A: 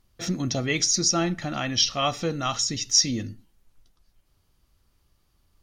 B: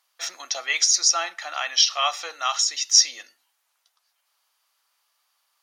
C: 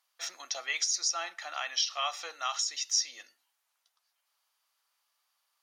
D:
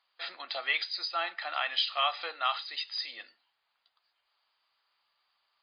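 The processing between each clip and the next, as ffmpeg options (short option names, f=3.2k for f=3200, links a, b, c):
-af "highpass=f=780:w=0.5412,highpass=f=780:w=1.3066,volume=4dB"
-af "acompressor=threshold=-22dB:ratio=2,volume=-7dB"
-af "volume=4.5dB" -ar 11025 -c:a libmp3lame -b:a 32k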